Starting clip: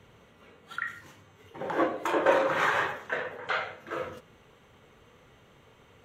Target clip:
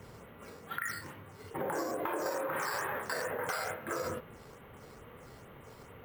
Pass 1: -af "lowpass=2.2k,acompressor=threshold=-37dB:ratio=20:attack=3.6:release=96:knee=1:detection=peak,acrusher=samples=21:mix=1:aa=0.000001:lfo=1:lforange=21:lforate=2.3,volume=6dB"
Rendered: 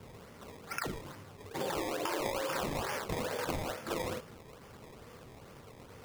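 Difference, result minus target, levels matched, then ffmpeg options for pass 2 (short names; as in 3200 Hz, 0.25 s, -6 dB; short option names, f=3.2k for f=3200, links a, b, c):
decimation with a swept rate: distortion +15 dB
-af "lowpass=2.2k,acompressor=threshold=-37dB:ratio=20:attack=3.6:release=96:knee=1:detection=peak,acrusher=samples=5:mix=1:aa=0.000001:lfo=1:lforange=5:lforate=2.3,volume=6dB"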